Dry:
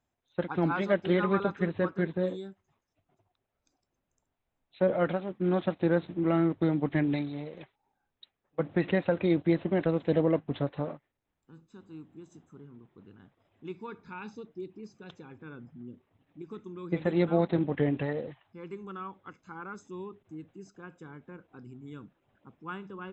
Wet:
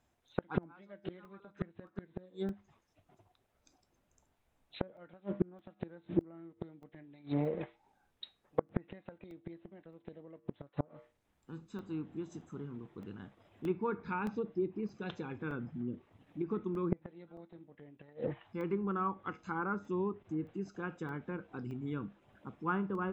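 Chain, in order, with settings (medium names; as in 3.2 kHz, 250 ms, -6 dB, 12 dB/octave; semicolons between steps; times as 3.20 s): feedback comb 67 Hz, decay 0.29 s, harmonics odd, mix 50%; inverted gate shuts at -27 dBFS, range -34 dB; low-pass that closes with the level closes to 1.5 kHz, closed at -42.5 dBFS; crackling interface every 0.62 s, samples 64, zero, from 0.63 s; trim +11 dB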